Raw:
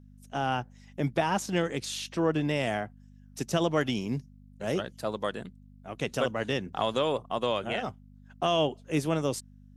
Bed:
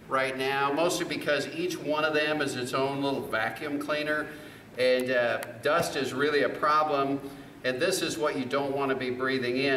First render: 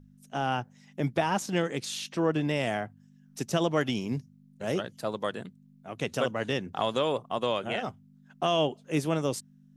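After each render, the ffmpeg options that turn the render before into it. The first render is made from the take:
-af "bandreject=f=50:t=h:w=4,bandreject=f=100:t=h:w=4"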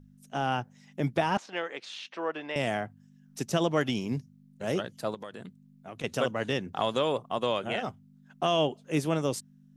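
-filter_complex "[0:a]asettb=1/sr,asplit=3[s0][s1][s2];[s0]atrim=end=1.374[s3];[s1]atrim=start=1.37:end=2.56,asetpts=PTS-STARTPTS,afade=t=in:d=0.004:c=qsin,afade=t=out:st=1.186:d=0.004:c=qsin,highpass=610,lowpass=3100[s4];[s2]atrim=start=2.556[s5];[s3][s4]acrossfade=d=0.004:c1=hsin:c2=qsin[s6];[s6][s5]acrossfade=d=0.004:c1=qsin:c2=hsin,asettb=1/sr,asplit=3[s7][s8][s9];[s7]atrim=end=5.144[s10];[s8]atrim=start=5.14:end=6.04,asetpts=PTS-STARTPTS,afade=t=in:d=0.004:c=qsin,afade=t=out:st=0.896:d=0.004:c=qsin,acompressor=threshold=0.0141:ratio=6:attack=3.2:release=140:knee=1:detection=peak[s11];[s9]atrim=start=6.036[s12];[s10][s11]acrossfade=d=0.004:c1=hsin:c2=qsin[s13];[s13][s12]acrossfade=d=0.004:c1=qsin:c2=hsin"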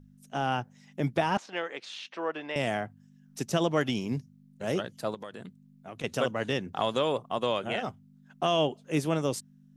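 -af anull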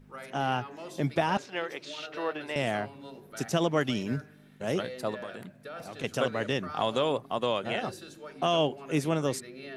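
-filter_complex "[1:a]volume=0.141[s0];[0:a][s0]amix=inputs=2:normalize=0"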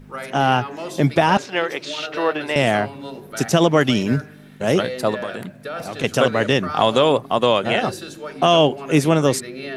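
-af "volume=3.98,alimiter=limit=0.708:level=0:latency=1"

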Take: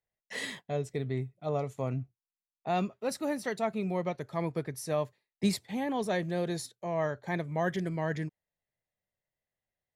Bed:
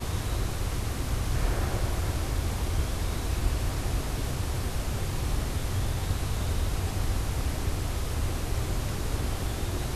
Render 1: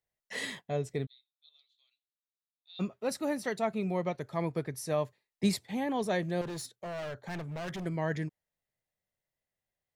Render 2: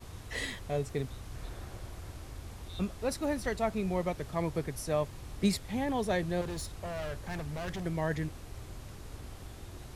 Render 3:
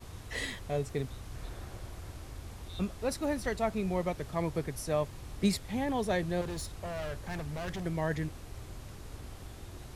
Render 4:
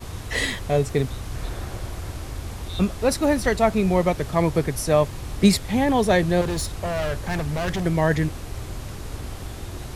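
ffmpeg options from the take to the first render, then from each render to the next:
-filter_complex "[0:a]asplit=3[s0][s1][s2];[s0]afade=t=out:st=1.05:d=0.02[s3];[s1]asuperpass=centerf=3800:order=4:qfactor=5,afade=t=in:st=1.05:d=0.02,afade=t=out:st=2.79:d=0.02[s4];[s2]afade=t=in:st=2.79:d=0.02[s5];[s3][s4][s5]amix=inputs=3:normalize=0,asettb=1/sr,asplit=3[s6][s7][s8];[s6]atrim=end=6.414[s9];[s7]atrim=start=6.41:end=7.86,asetpts=PTS-STARTPTS,afade=t=in:d=0.004:c=qsin,afade=t=out:st=1.446:d=0.004:c=qsin,asoftclip=type=hard:threshold=0.0158[s10];[s8]atrim=start=7.856[s11];[s9][s10]acrossfade=d=0.004:c1=hsin:c2=qsin[s12];[s12][s11]acrossfade=d=0.004:c1=qsin:c2=hsin"
-filter_complex "[1:a]volume=0.168[s0];[0:a][s0]amix=inputs=2:normalize=0"
-af anull
-af "volume=3.98"

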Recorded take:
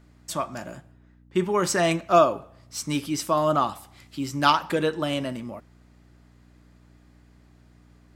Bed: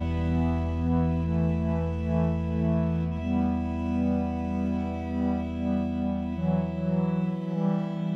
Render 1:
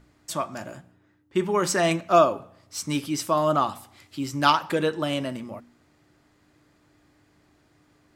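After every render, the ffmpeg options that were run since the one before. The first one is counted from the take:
-af "bandreject=f=60:t=h:w=4,bandreject=f=120:t=h:w=4,bandreject=f=180:t=h:w=4,bandreject=f=240:t=h:w=4"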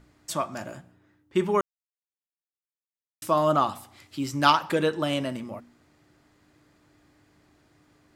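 -filter_complex "[0:a]asplit=3[s0][s1][s2];[s0]atrim=end=1.61,asetpts=PTS-STARTPTS,afade=t=out:st=1.606:d=0.004:c=hsin[s3];[s1]atrim=start=1.61:end=3.22,asetpts=PTS-STARTPTS,volume=0[s4];[s2]atrim=start=3.22,asetpts=PTS-STARTPTS,afade=t=in:d=0.004:c=hsin[s5];[s3][s4][s5]concat=n=3:v=0:a=1"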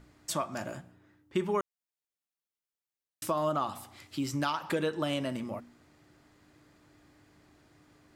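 -af "alimiter=limit=0.237:level=0:latency=1:release=188,acompressor=threshold=0.0282:ratio=2"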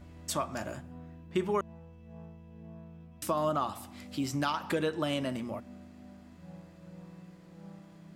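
-filter_complex "[1:a]volume=0.0708[s0];[0:a][s0]amix=inputs=2:normalize=0"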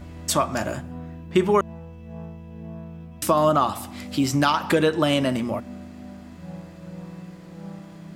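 -af "volume=3.55"

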